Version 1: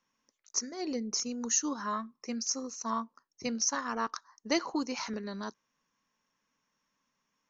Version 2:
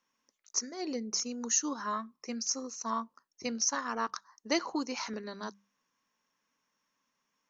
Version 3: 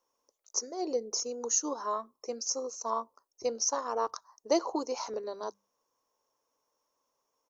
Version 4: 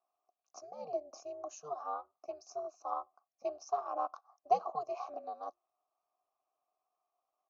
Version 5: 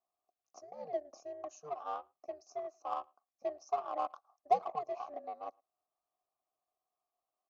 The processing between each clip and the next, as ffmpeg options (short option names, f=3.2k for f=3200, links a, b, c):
-af "lowshelf=f=130:g=-8.5,bandreject=f=50:t=h:w=6,bandreject=f=100:t=h:w=6,bandreject=f=150:t=h:w=6,bandreject=f=200:t=h:w=6"
-af "firequalizer=gain_entry='entry(120,0);entry(180,-15);entry(330,2);entry(470,9);entry(980,3);entry(1700,-12);entry(5200,-1);entry(9900,4)':delay=0.05:min_phase=1"
-filter_complex "[0:a]aeval=exprs='val(0)*sin(2*PI*150*n/s)':c=same,asplit=3[a][b][c];[a]bandpass=f=730:t=q:w=8,volume=0dB[d];[b]bandpass=f=1.09k:t=q:w=8,volume=-6dB[e];[c]bandpass=f=2.44k:t=q:w=8,volume=-9dB[f];[d][e][f]amix=inputs=3:normalize=0,volume=6dB"
-filter_complex "[0:a]asplit=2[a][b];[b]adynamicsmooth=sensitivity=6:basefreq=670,volume=0dB[c];[a][c]amix=inputs=2:normalize=0,asplit=2[d][e];[e]adelay=110,highpass=300,lowpass=3.4k,asoftclip=type=hard:threshold=-20.5dB,volume=-30dB[f];[d][f]amix=inputs=2:normalize=0,volume=-5.5dB"